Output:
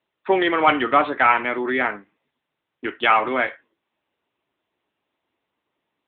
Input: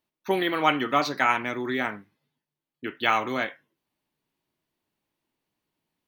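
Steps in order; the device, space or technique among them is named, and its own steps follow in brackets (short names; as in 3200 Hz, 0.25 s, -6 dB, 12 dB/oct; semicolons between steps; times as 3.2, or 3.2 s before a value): telephone (BPF 320–3300 Hz; soft clip -13 dBFS, distortion -17 dB; gain +8.5 dB; AMR-NB 10.2 kbps 8000 Hz)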